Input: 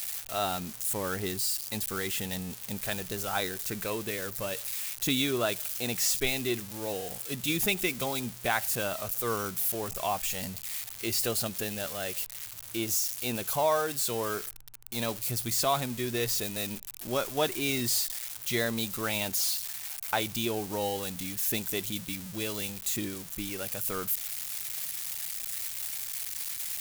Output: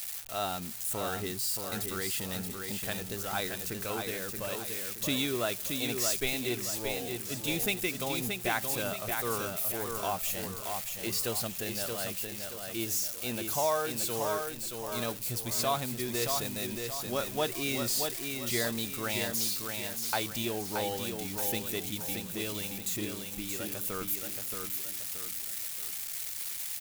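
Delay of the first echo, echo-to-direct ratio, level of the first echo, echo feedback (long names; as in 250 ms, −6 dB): 626 ms, −4.0 dB, −5.0 dB, 40%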